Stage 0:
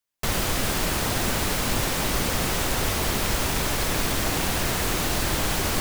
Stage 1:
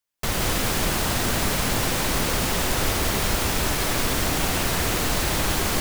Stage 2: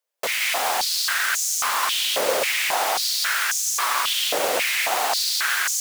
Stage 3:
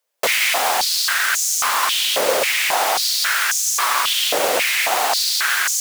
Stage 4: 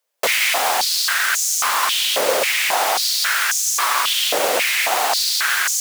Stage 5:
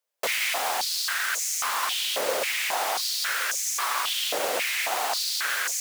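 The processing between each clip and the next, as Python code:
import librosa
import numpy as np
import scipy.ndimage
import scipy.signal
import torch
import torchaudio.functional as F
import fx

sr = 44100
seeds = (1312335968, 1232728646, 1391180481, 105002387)

y1 = x + 10.0 ** (-4.0 / 20.0) * np.pad(x, (int(173 * sr / 1000.0), 0))[:len(x)]
y2 = fx.filter_held_highpass(y1, sr, hz=3.7, low_hz=530.0, high_hz=6400.0)
y3 = fx.rider(y2, sr, range_db=10, speed_s=0.5)
y3 = F.gain(torch.from_numpy(y3), 4.0).numpy()
y4 = fx.low_shelf(y3, sr, hz=79.0, db=-10.0)
y5 = y4 + 10.0 ** (-19.0 / 20.0) * np.pad(y4, (int(1119 * sr / 1000.0), 0))[:len(y4)]
y5 = F.gain(torch.from_numpy(y5), -8.5).numpy()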